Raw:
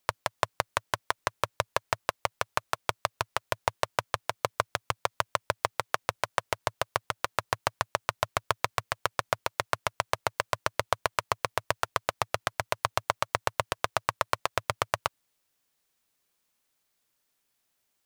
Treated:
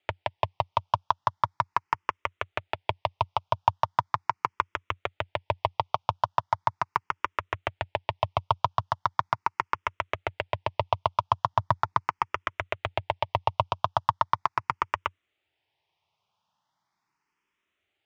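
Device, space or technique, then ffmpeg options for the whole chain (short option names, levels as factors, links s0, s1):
barber-pole phaser into a guitar amplifier: -filter_complex "[0:a]asettb=1/sr,asplit=3[s0][s1][s2];[s0]atrim=end=11.524[s3];[s1]atrim=start=11.52:end=12.03,asetpts=PTS-STARTPTS,afade=t=in:d=0.004:c=qsin,afade=t=out:st=0.506:d=0.004:c=qsin,lowshelf=f=420:g=8.5[s4];[s2]atrim=start=12.026[s5];[s3][s4]acrossfade=d=0.004:c1=hsin:c2=qsin[s6];[s6][s5]acrossfade=d=0.004:c1=qsin:c2=hsin,asplit=2[s7][s8];[s8]afreqshift=0.39[s9];[s7][s9]amix=inputs=2:normalize=1,asoftclip=type=tanh:threshold=0.15,highpass=75,equalizer=f=91:t=q:w=4:g=5,equalizer=f=250:t=q:w=4:g=-10,equalizer=f=500:t=q:w=4:g=-9,equalizer=f=910:t=q:w=4:g=8,equalizer=f=1600:t=q:w=4:g=-6,equalizer=f=4200:t=q:w=4:g=-9,lowpass=f=4400:w=0.5412,lowpass=f=4400:w=1.3066,volume=2.24"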